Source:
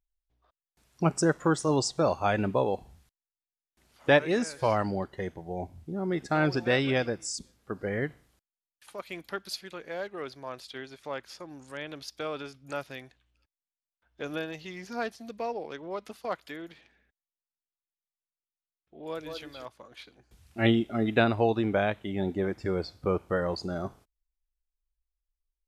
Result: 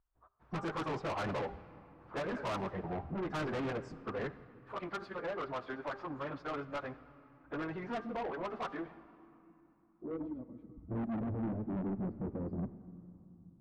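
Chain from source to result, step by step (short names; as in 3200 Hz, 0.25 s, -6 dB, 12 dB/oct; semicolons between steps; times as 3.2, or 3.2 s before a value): rattling part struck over -29 dBFS, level -28 dBFS; de-hum 398.5 Hz, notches 4; in parallel at +1 dB: compressor 10:1, threshold -36 dBFS, peak gain reduction 20 dB; on the sum: plain phase-vocoder stretch 0.53×; hard clip -26.5 dBFS, distortion -9 dB; low-pass sweep 1200 Hz -> 240 Hz, 8.75–10.43; soft clip -34 dBFS, distortion -7 dB; on a send at -16 dB: reverb RT60 3.3 s, pre-delay 50 ms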